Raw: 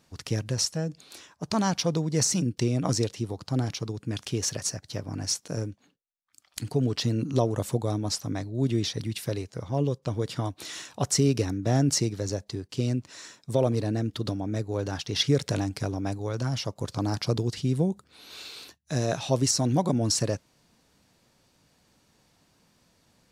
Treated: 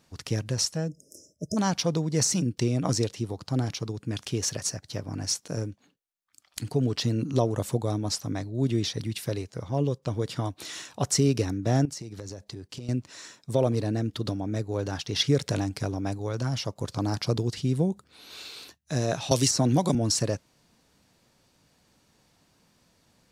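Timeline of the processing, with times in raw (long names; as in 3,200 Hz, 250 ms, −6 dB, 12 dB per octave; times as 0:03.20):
0:00.89–0:01.57: time-frequency box erased 650–5,000 Hz
0:11.85–0:12.89: downward compressor 10 to 1, threshold −34 dBFS
0:19.31–0:19.95: multiband upward and downward compressor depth 100%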